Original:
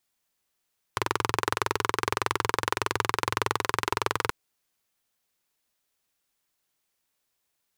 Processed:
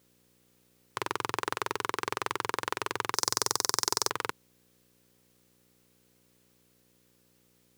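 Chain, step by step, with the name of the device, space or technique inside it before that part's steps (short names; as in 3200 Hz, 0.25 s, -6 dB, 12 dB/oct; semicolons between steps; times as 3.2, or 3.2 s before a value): video cassette with head-switching buzz (buzz 60 Hz, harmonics 9, -60 dBFS -5 dB/oct; white noise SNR 32 dB); 3.14–4.1 resonant high shelf 3900 Hz +11.5 dB, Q 3; HPF 140 Hz 12 dB/oct; gain -5 dB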